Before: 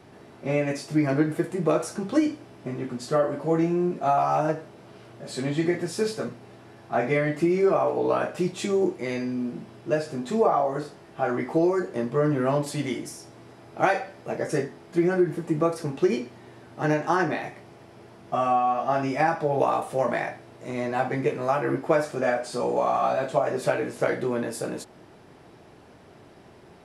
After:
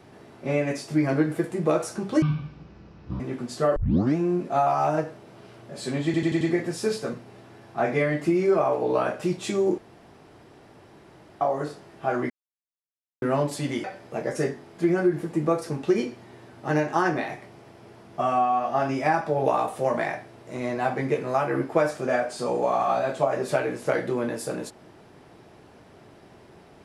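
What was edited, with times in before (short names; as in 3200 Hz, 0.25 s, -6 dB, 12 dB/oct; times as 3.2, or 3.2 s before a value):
2.22–2.71 speed 50%
3.27 tape start 0.40 s
5.56 stutter 0.09 s, 5 plays
8.93–10.56 room tone
11.45–12.37 mute
12.99–13.98 cut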